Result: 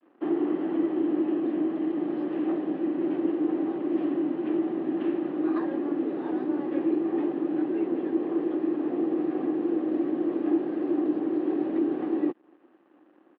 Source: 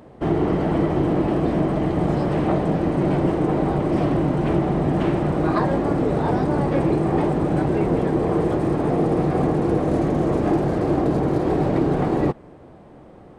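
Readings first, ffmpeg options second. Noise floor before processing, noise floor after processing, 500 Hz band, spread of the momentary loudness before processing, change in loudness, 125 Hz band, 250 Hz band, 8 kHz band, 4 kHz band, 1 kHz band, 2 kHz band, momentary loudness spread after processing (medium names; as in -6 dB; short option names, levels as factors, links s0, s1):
-45 dBFS, -60 dBFS, -8.5 dB, 1 LU, -6.5 dB, -27.0 dB, -4.5 dB, no reading, under -10 dB, -14.5 dB, -12.0 dB, 2 LU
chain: -af "adynamicequalizer=threshold=0.0141:dfrequency=1000:dqfactor=0.87:tfrequency=1000:tqfactor=0.87:attack=5:release=100:ratio=0.375:range=2.5:mode=cutabove:tftype=bell,aresample=16000,aeval=exprs='sgn(val(0))*max(abs(val(0))-0.00447,0)':c=same,aresample=44100,highpass=f=300:w=0.5412,highpass=f=300:w=1.3066,equalizer=f=310:t=q:w=4:g=8,equalizer=f=460:t=q:w=4:g=-9,equalizer=f=650:t=q:w=4:g=-9,equalizer=f=940:t=q:w=4:g=-6,equalizer=f=1400:t=q:w=4:g=-6,equalizer=f=2200:t=q:w=4:g=-9,lowpass=f=2700:w=0.5412,lowpass=f=2700:w=1.3066,volume=0.631"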